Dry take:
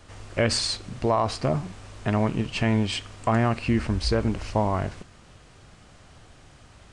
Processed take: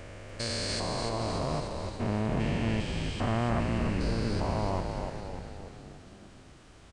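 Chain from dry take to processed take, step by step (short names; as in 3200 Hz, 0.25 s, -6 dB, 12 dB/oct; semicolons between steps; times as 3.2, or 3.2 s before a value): stepped spectrum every 0.4 s; on a send: frequency-shifting echo 0.293 s, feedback 58%, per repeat -60 Hz, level -5 dB; on the sum: gain -3.5 dB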